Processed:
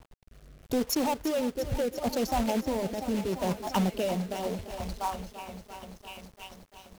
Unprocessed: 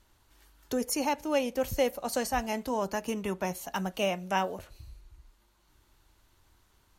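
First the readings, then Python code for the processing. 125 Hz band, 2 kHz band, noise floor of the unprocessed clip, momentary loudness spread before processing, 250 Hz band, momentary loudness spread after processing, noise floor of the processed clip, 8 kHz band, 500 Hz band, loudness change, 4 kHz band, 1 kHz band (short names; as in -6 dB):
+6.0 dB, -4.5 dB, -67 dBFS, 6 LU, +4.0 dB, 17 LU, -58 dBFS, -1.0 dB, +0.5 dB, +0.5 dB, +1.0 dB, 0.0 dB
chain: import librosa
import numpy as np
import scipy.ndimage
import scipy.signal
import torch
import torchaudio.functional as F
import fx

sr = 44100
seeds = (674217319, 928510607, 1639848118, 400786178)

p1 = fx.wiener(x, sr, points=25)
p2 = fx.env_phaser(p1, sr, low_hz=270.0, high_hz=1700.0, full_db=-34.5)
p3 = p2 + fx.echo_stepped(p2, sr, ms=692, hz=1100.0, octaves=0.7, feedback_pct=70, wet_db=-7, dry=0)
p4 = 10.0 ** (-20.0 / 20.0) * np.tanh(p3 / 10.0 ** (-20.0 / 20.0))
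p5 = fx.over_compress(p4, sr, threshold_db=-35.0, ratio=-0.5)
p6 = p4 + (p5 * 10.0 ** (0.0 / 20.0))
p7 = fx.dynamic_eq(p6, sr, hz=4200.0, q=1.4, threshold_db=-53.0, ratio=4.0, max_db=-5)
p8 = fx.dereverb_blind(p7, sr, rt60_s=1.3)
p9 = fx.quant_companded(p8, sr, bits=4)
p10 = fx.rotary(p9, sr, hz=0.75)
p11 = fx.echo_crushed(p10, sr, ms=343, feedback_pct=80, bits=9, wet_db=-13)
y = p11 * 10.0 ** (3.0 / 20.0)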